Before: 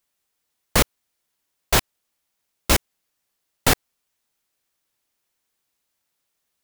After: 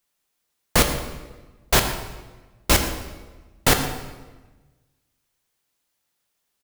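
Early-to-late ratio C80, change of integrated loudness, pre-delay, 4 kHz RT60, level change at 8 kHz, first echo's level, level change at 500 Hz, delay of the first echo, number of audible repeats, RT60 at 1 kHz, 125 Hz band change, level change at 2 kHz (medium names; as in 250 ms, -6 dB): 8.5 dB, 0.0 dB, 4 ms, 0.95 s, +1.0 dB, -15.5 dB, +1.5 dB, 120 ms, 1, 1.2 s, +1.5 dB, +1.0 dB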